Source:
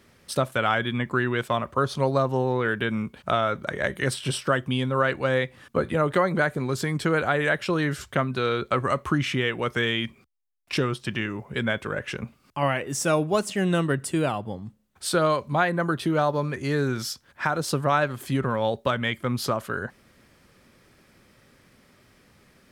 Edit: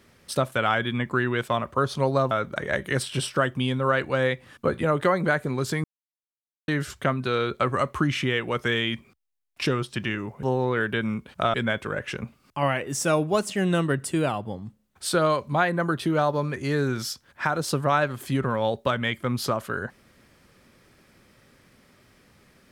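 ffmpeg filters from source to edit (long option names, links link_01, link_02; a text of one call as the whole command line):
ffmpeg -i in.wav -filter_complex "[0:a]asplit=6[link_01][link_02][link_03][link_04][link_05][link_06];[link_01]atrim=end=2.312[link_07];[link_02]atrim=start=3.418:end=6.95,asetpts=PTS-STARTPTS,afade=type=out:start_time=3.528:duration=0.004:curve=hsin[link_08];[link_03]atrim=start=6.95:end=7.79,asetpts=PTS-STARTPTS,volume=0[link_09];[link_04]atrim=start=7.79:end=11.542,asetpts=PTS-STARTPTS,afade=type=in:duration=0.004:curve=hsin[link_10];[link_05]atrim=start=2.308:end=3.422[link_11];[link_06]atrim=start=11.538[link_12];[link_08][link_09][link_10]concat=n=3:v=0:a=1[link_13];[link_07][link_13]acrossfade=duration=0.004:curve1=hsin:curve2=hsin[link_14];[link_14][link_11]acrossfade=duration=0.004:curve1=hsin:curve2=hsin[link_15];[link_15][link_12]acrossfade=duration=0.004:curve1=hsin:curve2=hsin" out.wav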